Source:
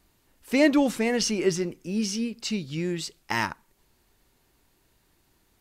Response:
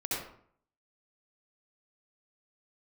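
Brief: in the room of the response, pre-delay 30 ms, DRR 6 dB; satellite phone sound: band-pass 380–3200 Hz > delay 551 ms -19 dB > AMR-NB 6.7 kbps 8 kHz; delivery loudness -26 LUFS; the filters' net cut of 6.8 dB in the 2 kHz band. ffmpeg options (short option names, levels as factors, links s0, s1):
-filter_complex "[0:a]equalizer=f=2000:t=o:g=-7,asplit=2[s0][s1];[1:a]atrim=start_sample=2205,adelay=30[s2];[s1][s2]afir=irnorm=-1:irlink=0,volume=0.266[s3];[s0][s3]amix=inputs=2:normalize=0,highpass=380,lowpass=3200,aecho=1:1:551:0.112,volume=1.78" -ar 8000 -c:a libopencore_amrnb -b:a 6700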